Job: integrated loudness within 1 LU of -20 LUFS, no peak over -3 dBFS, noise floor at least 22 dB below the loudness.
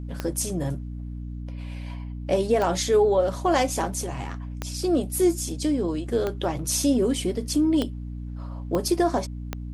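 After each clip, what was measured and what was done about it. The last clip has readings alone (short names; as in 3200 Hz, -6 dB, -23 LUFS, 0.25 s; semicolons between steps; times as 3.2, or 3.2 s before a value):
clicks 7; hum 60 Hz; harmonics up to 300 Hz; hum level -31 dBFS; loudness -25.0 LUFS; peak -10.0 dBFS; loudness target -20.0 LUFS
-> de-click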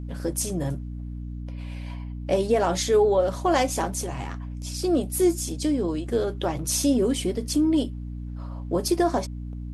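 clicks 0; hum 60 Hz; harmonics up to 300 Hz; hum level -31 dBFS
-> notches 60/120/180/240/300 Hz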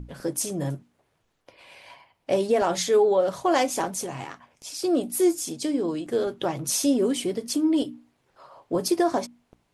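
hum none; loudness -25.0 LUFS; peak -10.0 dBFS; loudness target -20.0 LUFS
-> gain +5 dB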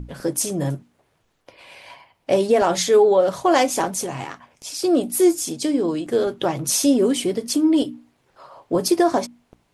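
loudness -20.0 LUFS; peak -5.0 dBFS; noise floor -67 dBFS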